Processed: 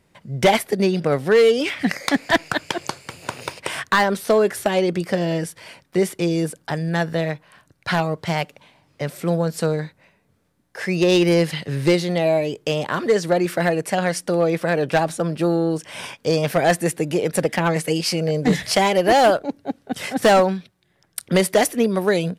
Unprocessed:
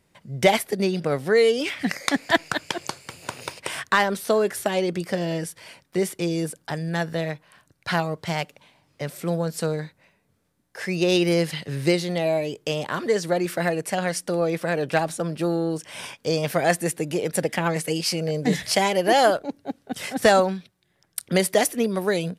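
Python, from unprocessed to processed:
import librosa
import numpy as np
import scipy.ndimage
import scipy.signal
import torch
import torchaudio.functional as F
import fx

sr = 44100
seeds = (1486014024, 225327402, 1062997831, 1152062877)

y = fx.high_shelf(x, sr, hz=4100.0, db=-4.5)
y = np.clip(10.0 ** (14.0 / 20.0) * y, -1.0, 1.0) / 10.0 ** (14.0 / 20.0)
y = y * librosa.db_to_amplitude(4.5)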